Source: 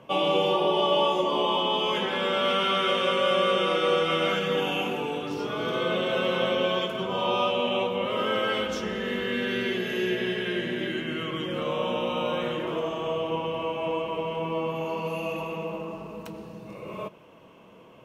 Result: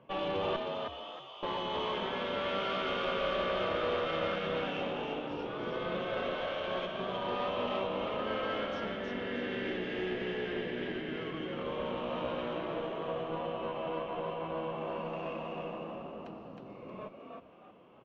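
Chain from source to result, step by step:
0:00.56–0:01.43: first difference
0:06.04–0:06.66: high-pass filter 250 Hz → 770 Hz 12 dB per octave
tube saturation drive 21 dB, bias 0.65
high-frequency loss of the air 240 metres
echo with shifted repeats 315 ms, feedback 32%, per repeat +65 Hz, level −3.5 dB
level −5 dB

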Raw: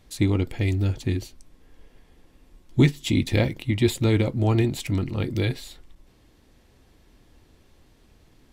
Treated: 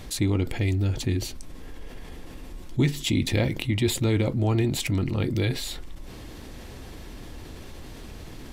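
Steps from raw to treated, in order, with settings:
envelope flattener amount 50%
level −5.5 dB

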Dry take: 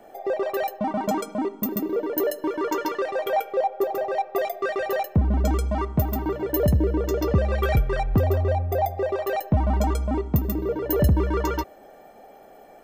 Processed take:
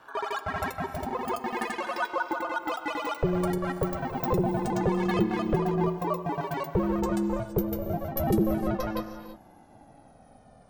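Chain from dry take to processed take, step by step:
gliding playback speed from 177% → 63%
reverb whose tail is shaped and stops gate 360 ms rising, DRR 10.5 dB
ring modulation 270 Hz
level −3 dB

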